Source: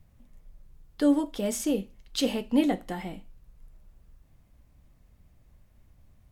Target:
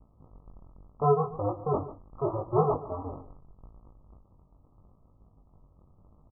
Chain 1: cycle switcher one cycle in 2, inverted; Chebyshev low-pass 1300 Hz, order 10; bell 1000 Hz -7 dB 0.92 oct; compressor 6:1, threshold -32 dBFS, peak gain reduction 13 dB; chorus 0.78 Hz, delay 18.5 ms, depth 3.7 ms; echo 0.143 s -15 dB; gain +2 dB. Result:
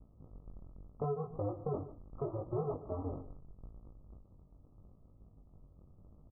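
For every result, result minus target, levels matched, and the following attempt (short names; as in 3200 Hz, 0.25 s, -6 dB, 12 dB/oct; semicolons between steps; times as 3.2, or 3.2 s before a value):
compressor: peak gain reduction +13 dB; 1000 Hz band -5.0 dB
cycle switcher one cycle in 2, inverted; Chebyshev low-pass 1300 Hz, order 10; bell 1000 Hz -7 dB 0.92 oct; chorus 0.78 Hz, delay 18.5 ms, depth 3.7 ms; echo 0.143 s -15 dB; gain +2 dB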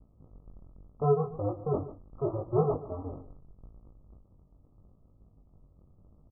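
1000 Hz band -4.5 dB
cycle switcher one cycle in 2, inverted; Chebyshev low-pass 1300 Hz, order 10; bell 1000 Hz +3 dB 0.92 oct; chorus 0.78 Hz, delay 18.5 ms, depth 3.7 ms; echo 0.143 s -15 dB; gain +2 dB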